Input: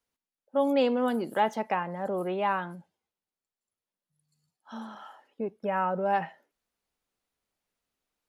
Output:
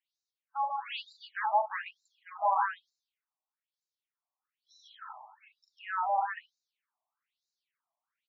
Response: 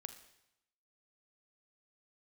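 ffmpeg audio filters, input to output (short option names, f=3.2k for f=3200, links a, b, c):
-filter_complex "[0:a]asettb=1/sr,asplit=3[a][b][c];[a]atrim=end=1.764[d];[b]atrim=start=1.76:end=2.22,asetpts=PTS-STARTPTS,afade=t=in:d=0.004:c=qsin,afade=t=out:st=0.456:d=0.004:c=qsin,equalizer=f=3.9k:t=o:w=1.1:g=-5.5[e];[c]atrim=start=2.216[f];[d][e]acrossfade=d=0.004:c1=hsin:c2=qsin[g];[g][f]acrossfade=d=0.004:c1=qsin:c2=hsin,aecho=1:1:40.82|145.8:0.631|0.891,afftfilt=real='re*between(b*sr/1024,820*pow(5300/820,0.5+0.5*sin(2*PI*1.1*pts/sr))/1.41,820*pow(5300/820,0.5+0.5*sin(2*PI*1.1*pts/sr))*1.41)':imag='im*between(b*sr/1024,820*pow(5300/820,0.5+0.5*sin(2*PI*1.1*pts/sr))/1.41,820*pow(5300/820,0.5+0.5*sin(2*PI*1.1*pts/sr))*1.41)':win_size=1024:overlap=0.75"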